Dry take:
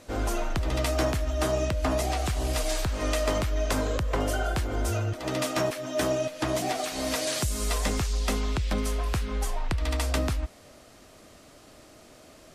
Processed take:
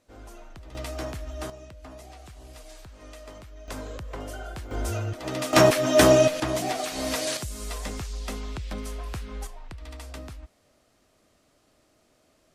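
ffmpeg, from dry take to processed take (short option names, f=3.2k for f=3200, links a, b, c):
-af "asetnsamples=n=441:p=0,asendcmd='0.75 volume volume -8dB;1.5 volume volume -18dB;3.68 volume volume -9.5dB;4.71 volume volume -1.5dB;5.53 volume volume 10.5dB;6.4 volume volume 0.5dB;7.37 volume volume -6.5dB;9.47 volume volume -13dB',volume=-17dB"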